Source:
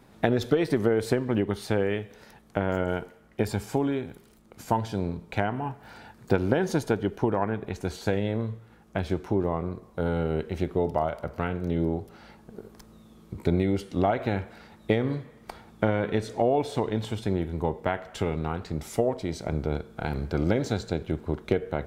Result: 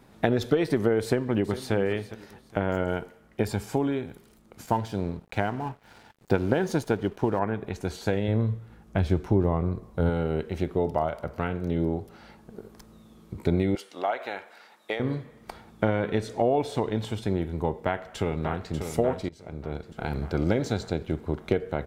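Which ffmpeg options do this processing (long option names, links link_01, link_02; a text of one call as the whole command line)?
ffmpeg -i in.wav -filter_complex "[0:a]asplit=2[link_01][link_02];[link_02]afade=type=in:start_time=1.03:duration=0.01,afade=type=out:start_time=1.73:duration=0.01,aecho=0:1:410|820|1230:0.211349|0.0634047|0.0190214[link_03];[link_01][link_03]amix=inputs=2:normalize=0,asettb=1/sr,asplit=3[link_04][link_05][link_06];[link_04]atrim=end=4.664[link_07];[link_05]atrim=start=4.66:end=7.39,asetpts=PTS-STARTPTS,afade=type=in:duration=0.004:curve=qsin,afade=type=out:start_time=2.726:duration=0.004:curve=qsin,aeval=exprs='sgn(val(0))*max(abs(val(0))-0.00335,0)':channel_layout=same[link_08];[link_06]atrim=start=7.386[link_09];[link_07][link_08]acrossfade=duration=0.004:curve1=hsin:curve2=qsin[link_10];[link_10][link_09]acrossfade=duration=0.004:curve1=qsin:curve2=hsin,asettb=1/sr,asplit=3[link_11][link_12][link_13];[link_11]atrim=end=8.284[link_14];[link_12]atrim=start=8.28:end=10.1,asetpts=PTS-STARTPTS,afade=type=in:duration=0.004:curve=qsin,afade=type=out:start_time=1.816:duration=0.004:curve=qsin,lowshelf=frequency=150:gain=10.5[link_15];[link_13]atrim=start=10.096[link_16];[link_14][link_15]acrossfade=duration=0.004:curve1=hsin:curve2=qsin[link_17];[link_17][link_16]acrossfade=duration=0.004:curve1=qsin:curve2=hsin,asettb=1/sr,asplit=3[link_18][link_19][link_20];[link_18]atrim=end=13.754[link_21];[link_19]atrim=start=13.75:end=15,asetpts=PTS-STARTPTS,afade=type=in:duration=0.004:curve=qsin,afade=type=out:start_time=1.246:duration=0.004:curve=qsin,highpass=650[link_22];[link_20]atrim=start=14.996[link_23];[link_21][link_22]acrossfade=duration=0.004:curve1=hsin:curve2=qsin[link_24];[link_24][link_23]acrossfade=duration=0.004:curve1=qsin:curve2=hsin,asplit=2[link_25][link_26];[link_26]afade=type=in:start_time=17.71:duration=0.01,afade=type=out:start_time=18.74:duration=0.01,aecho=0:1:590|1180|1770|2360|2950|3540|4130:0.421697|0.231933|0.127563|0.0701598|0.0385879|0.0212233|0.0116728[link_27];[link_25][link_27]amix=inputs=2:normalize=0,asplit=2[link_28][link_29];[link_28]atrim=end=19.29,asetpts=PTS-STARTPTS,afade=type=out:start_time=19.286:duration=0.004:curve=hsin:silence=0.0891251[link_30];[link_29]atrim=start=19.29,asetpts=PTS-STARTPTS,afade=type=in:duration=0.86:silence=0.0891251[link_31];[link_30][link_31]concat=n=2:v=0:a=1" out.wav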